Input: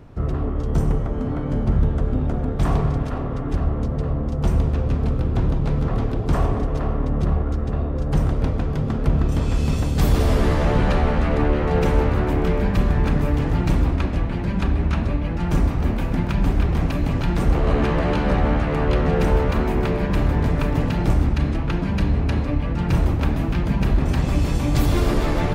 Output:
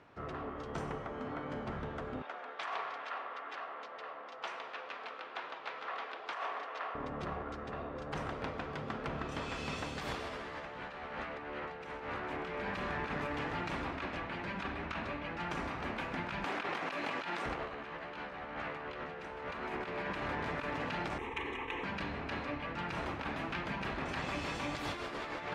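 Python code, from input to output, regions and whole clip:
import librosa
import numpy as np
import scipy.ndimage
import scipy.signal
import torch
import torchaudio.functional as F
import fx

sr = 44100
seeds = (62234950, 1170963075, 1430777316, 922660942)

y = fx.chain(x, sr, fx.bandpass_edges(low_hz=570.0, high_hz=3800.0),
    fx.tilt_eq(slope=2.5), at=(2.22, 6.95))
y = fx.chain(y, sr, fx.bessel_highpass(hz=340.0, order=2),
    fx.env_flatten(amount_pct=100), at=(16.44, 17.46))
y = fx.chain(y, sr, fx.lower_of_two(delay_ms=4.5),
    fx.fixed_phaser(hz=960.0, stages=8),
    fx.env_flatten(amount_pct=50), at=(21.18, 21.84))
y = scipy.signal.sosfilt(scipy.signal.butter(2, 1900.0, 'lowpass', fs=sr, output='sos'), y)
y = np.diff(y, prepend=0.0)
y = fx.over_compress(y, sr, threshold_db=-48.0, ratio=-0.5)
y = F.gain(torch.from_numpy(y), 10.0).numpy()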